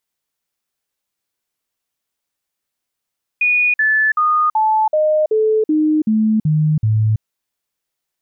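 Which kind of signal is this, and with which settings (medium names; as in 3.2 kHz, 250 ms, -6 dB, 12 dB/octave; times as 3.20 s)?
stepped sine 2.46 kHz down, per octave 2, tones 10, 0.33 s, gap 0.05 s -11.5 dBFS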